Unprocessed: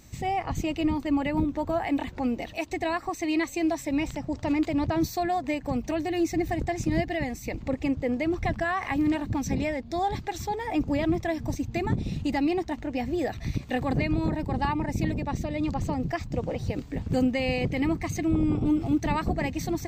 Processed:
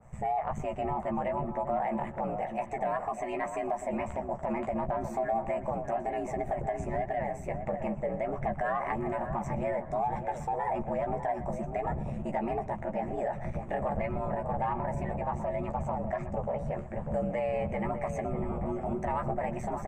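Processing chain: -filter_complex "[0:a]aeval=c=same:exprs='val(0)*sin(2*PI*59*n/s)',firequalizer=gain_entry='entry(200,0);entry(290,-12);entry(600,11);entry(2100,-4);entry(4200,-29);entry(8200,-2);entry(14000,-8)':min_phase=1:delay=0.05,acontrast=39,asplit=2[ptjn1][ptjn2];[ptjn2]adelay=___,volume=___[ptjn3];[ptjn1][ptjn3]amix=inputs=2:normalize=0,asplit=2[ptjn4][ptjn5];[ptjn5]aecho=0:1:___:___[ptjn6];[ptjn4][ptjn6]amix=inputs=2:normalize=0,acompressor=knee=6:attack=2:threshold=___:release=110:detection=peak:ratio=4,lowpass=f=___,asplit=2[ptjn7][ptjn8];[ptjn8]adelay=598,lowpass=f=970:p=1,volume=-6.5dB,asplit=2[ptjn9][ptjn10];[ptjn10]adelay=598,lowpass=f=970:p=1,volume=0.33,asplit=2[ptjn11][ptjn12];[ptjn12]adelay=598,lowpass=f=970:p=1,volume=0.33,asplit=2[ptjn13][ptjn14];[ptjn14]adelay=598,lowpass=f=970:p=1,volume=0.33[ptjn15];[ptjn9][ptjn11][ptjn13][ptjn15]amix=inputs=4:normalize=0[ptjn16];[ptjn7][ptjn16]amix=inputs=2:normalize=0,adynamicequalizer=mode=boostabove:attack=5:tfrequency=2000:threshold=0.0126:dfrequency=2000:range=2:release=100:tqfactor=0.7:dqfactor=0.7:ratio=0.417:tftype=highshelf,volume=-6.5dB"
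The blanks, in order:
14, -6dB, 122, 0.0841, -21dB, 7000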